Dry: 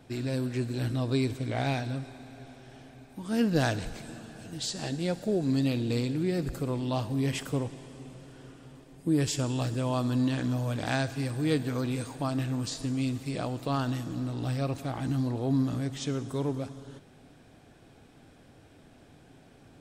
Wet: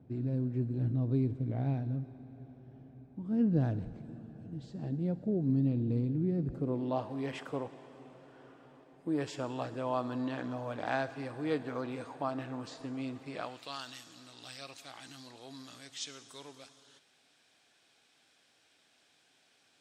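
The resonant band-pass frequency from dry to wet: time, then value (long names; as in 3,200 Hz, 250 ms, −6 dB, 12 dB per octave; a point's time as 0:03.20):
resonant band-pass, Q 0.79
0:06.41 150 Hz
0:07.14 850 Hz
0:13.26 850 Hz
0:13.76 4,700 Hz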